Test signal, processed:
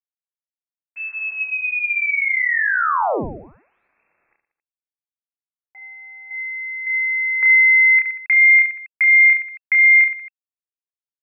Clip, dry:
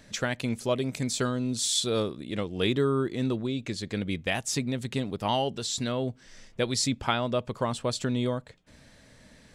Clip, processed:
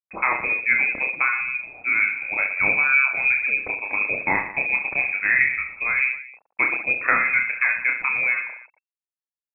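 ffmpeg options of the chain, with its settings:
-filter_complex "[0:a]highpass=f=330:p=1,afftfilt=real='re*gte(hypot(re,im),0.00631)':imag='im*gte(hypot(re,im),0.00631)':win_size=1024:overlap=0.75,asplit=2[s0][s1];[s1]acompressor=threshold=0.01:ratio=5,volume=0.841[s2];[s0][s2]amix=inputs=2:normalize=0,aeval=exprs='val(0)*gte(abs(val(0)),0.00376)':c=same,asplit=2[s3][s4];[s4]aecho=0:1:30|69|119.7|185.6|271.3:0.631|0.398|0.251|0.158|0.1[s5];[s3][s5]amix=inputs=2:normalize=0,lowpass=f=2300:t=q:w=0.5098,lowpass=f=2300:t=q:w=0.6013,lowpass=f=2300:t=q:w=0.9,lowpass=f=2300:t=q:w=2.563,afreqshift=-2700,volume=2.11"

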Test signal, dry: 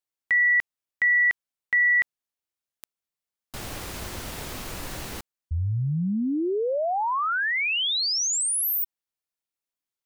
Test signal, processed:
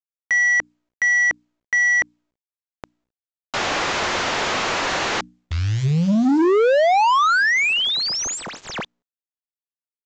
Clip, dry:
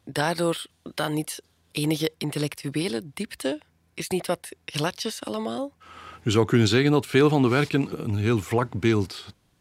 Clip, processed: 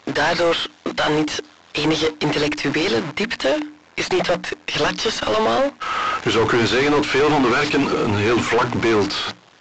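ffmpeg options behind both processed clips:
-filter_complex "[0:a]acrusher=bits=9:dc=4:mix=0:aa=0.000001,lowshelf=f=370:g=-6,bandreject=f=60:t=h:w=6,bandreject=f=120:t=h:w=6,bandreject=f=180:t=h:w=6,bandreject=f=240:t=h:w=6,bandreject=f=300:t=h:w=6,asplit=2[s0][s1];[s1]highpass=f=720:p=1,volume=70.8,asoftclip=type=tanh:threshold=0.447[s2];[s0][s2]amix=inputs=2:normalize=0,lowpass=f=1800:p=1,volume=0.501,volume=0.841" -ar 16000 -c:a pcm_mulaw

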